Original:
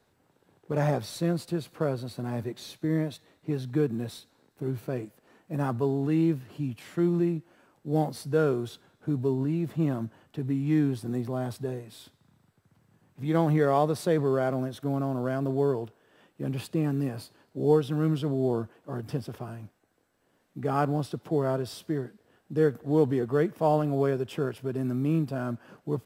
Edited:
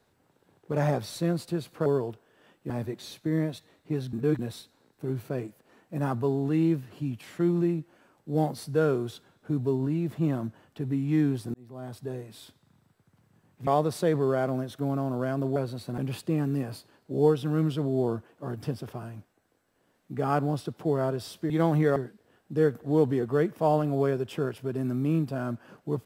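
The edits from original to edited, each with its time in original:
0:01.86–0:02.28: swap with 0:15.60–0:16.44
0:03.71–0:03.97: reverse
0:11.12–0:11.87: fade in
0:13.25–0:13.71: move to 0:21.96

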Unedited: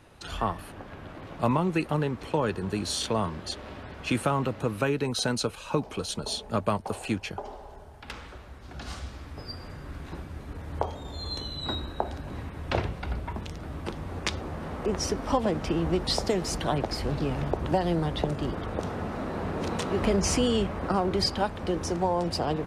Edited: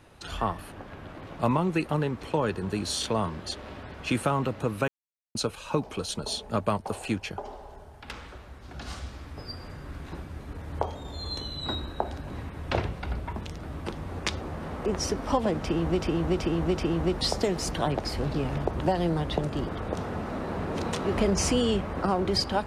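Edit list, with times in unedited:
0:04.88–0:05.35: silence
0:15.63–0:16.01: repeat, 4 plays

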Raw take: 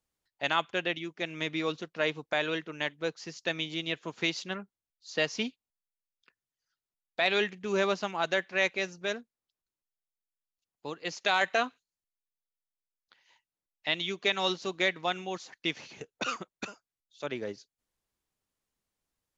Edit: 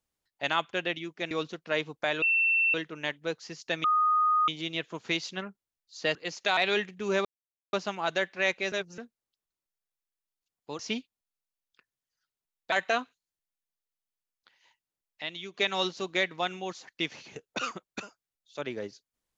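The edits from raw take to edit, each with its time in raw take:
0:01.31–0:01.60: remove
0:02.51: insert tone 2,690 Hz −21.5 dBFS 0.52 s
0:03.61: insert tone 1,240 Hz −21 dBFS 0.64 s
0:05.28–0:07.21: swap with 0:10.95–0:11.37
0:07.89: splice in silence 0.48 s
0:08.88–0:09.14: reverse
0:13.87–0:14.19: clip gain −7 dB

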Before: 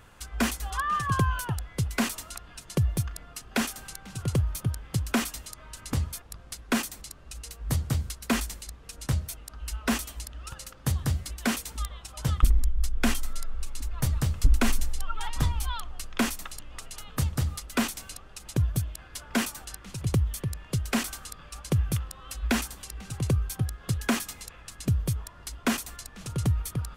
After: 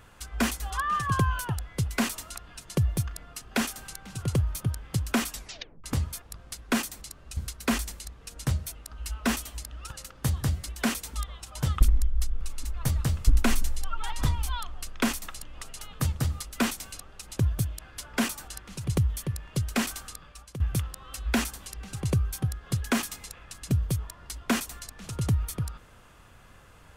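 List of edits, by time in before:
0:05.32: tape stop 0.52 s
0:07.37–0:07.99: remove
0:13.03–0:13.58: remove
0:21.24–0:21.77: fade out, to −16 dB

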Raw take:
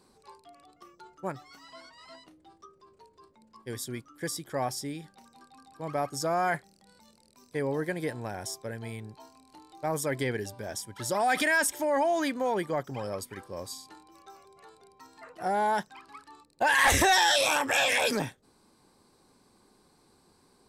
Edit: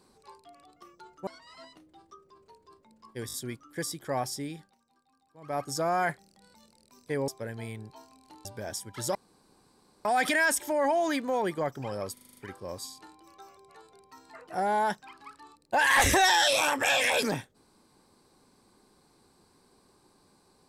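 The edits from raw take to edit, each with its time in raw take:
0:01.27–0:01.78: remove
0:03.78: stutter 0.02 s, 4 plays
0:05.01–0:06.05: duck −15.5 dB, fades 0.19 s
0:07.73–0:08.52: remove
0:09.69–0:10.47: remove
0:11.17: splice in room tone 0.90 s
0:13.25: stutter 0.04 s, 7 plays

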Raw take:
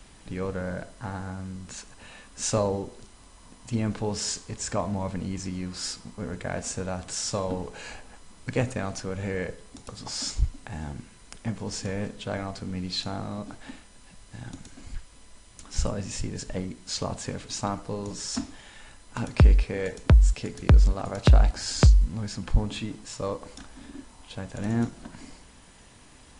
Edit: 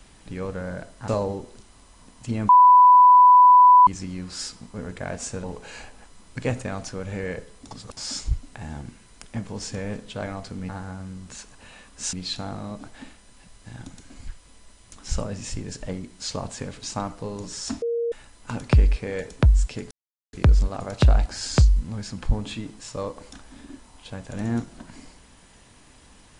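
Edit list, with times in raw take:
0:01.08–0:02.52: move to 0:12.80
0:03.93–0:05.31: beep over 994 Hz −8.5 dBFS
0:06.88–0:07.55: remove
0:09.82–0:10.08: reverse
0:18.49–0:18.79: beep over 468 Hz −22 dBFS
0:20.58: splice in silence 0.42 s

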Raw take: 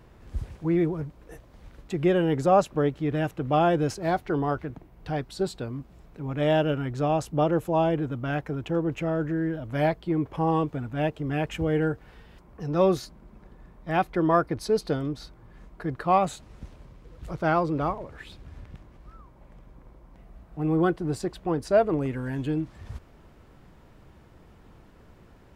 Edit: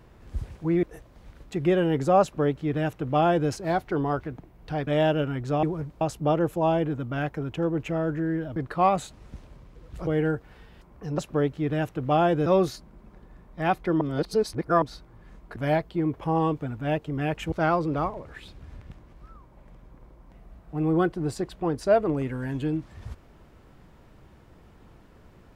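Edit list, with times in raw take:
0:00.83–0:01.21: move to 0:07.13
0:02.60–0:03.88: duplicate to 0:12.75
0:05.25–0:06.37: remove
0:09.68–0:11.64: swap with 0:15.85–0:17.36
0:14.30–0:15.11: reverse

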